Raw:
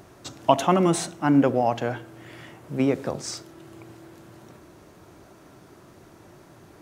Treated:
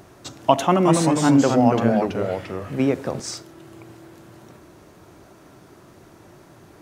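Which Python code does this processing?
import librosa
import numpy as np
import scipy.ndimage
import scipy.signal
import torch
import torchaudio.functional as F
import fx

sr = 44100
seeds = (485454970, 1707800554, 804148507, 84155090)

y = fx.echo_pitch(x, sr, ms=191, semitones=-2, count=2, db_per_echo=-3.0, at=(0.66, 3.2))
y = y * 10.0 ** (2.0 / 20.0)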